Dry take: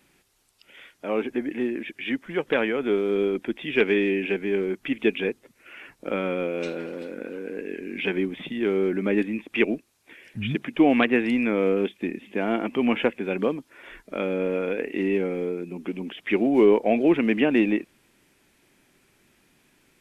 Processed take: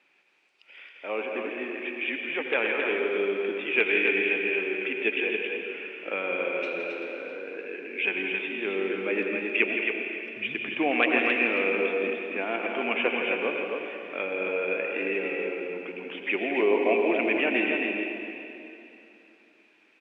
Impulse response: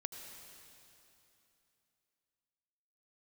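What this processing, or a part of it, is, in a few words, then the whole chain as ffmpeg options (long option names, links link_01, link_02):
station announcement: -filter_complex "[0:a]highpass=450,lowpass=3500,equalizer=frequency=2500:width_type=o:width=0.34:gain=9,aecho=1:1:166.2|271.1:0.355|0.562[link_01];[1:a]atrim=start_sample=2205[link_02];[link_01][link_02]afir=irnorm=-1:irlink=0"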